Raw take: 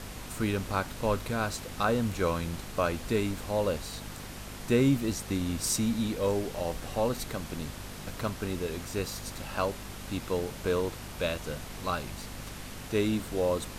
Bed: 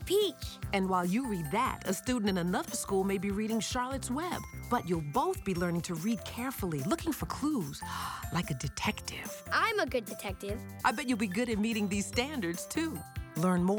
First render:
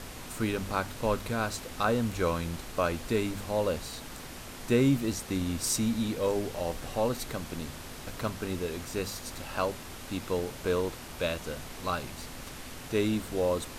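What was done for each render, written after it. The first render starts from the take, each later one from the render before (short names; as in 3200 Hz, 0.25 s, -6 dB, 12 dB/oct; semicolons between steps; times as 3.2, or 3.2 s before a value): de-hum 50 Hz, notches 4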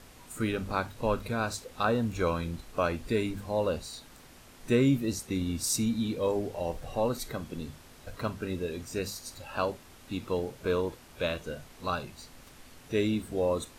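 noise print and reduce 10 dB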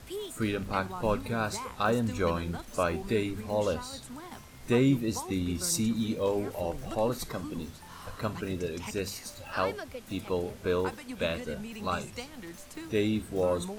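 add bed -10 dB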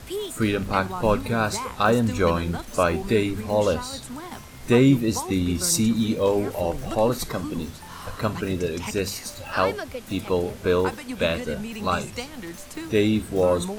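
gain +7.5 dB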